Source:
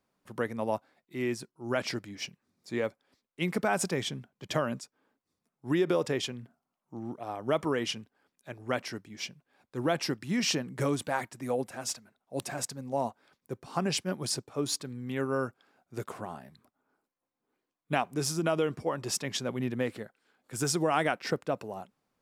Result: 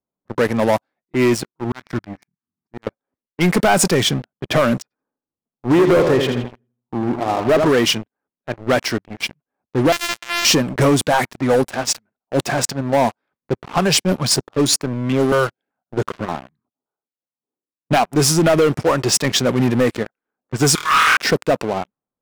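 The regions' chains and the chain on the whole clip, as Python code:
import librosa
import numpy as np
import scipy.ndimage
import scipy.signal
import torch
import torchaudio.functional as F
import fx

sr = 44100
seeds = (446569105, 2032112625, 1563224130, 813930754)

y = fx.chain(x, sr, fx.highpass(hz=73.0, slope=12),
    fx.auto_swell(attack_ms=295.0),
    fx.fixed_phaser(hz=1300.0, stages=4), at=(1.64, 2.87))
y = fx.chain(y, sr, fx.lowpass(hz=2000.0, slope=12),
    fx.echo_feedback(ms=82, feedback_pct=51, wet_db=-8.5), at=(4.82, 7.69))
y = fx.chain(y, sr, fx.sample_sort(block=128),
    fx.highpass(hz=1500.0, slope=12),
    fx.high_shelf(hz=2100.0, db=5.5), at=(9.92, 10.45))
y = fx.chain(y, sr, fx.highpass(hz=88.0, slope=12),
    fx.filter_held_notch(hz=5.2, low_hz=260.0, high_hz=3600.0), at=(13.78, 17.92))
y = fx.chain(y, sr, fx.ellip_highpass(hz=1100.0, order=4, stop_db=40),
    fx.room_flutter(wall_m=4.4, rt60_s=1.2), at=(20.75, 21.17))
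y = fx.env_lowpass(y, sr, base_hz=930.0, full_db=-27.5)
y = fx.leveller(y, sr, passes=5)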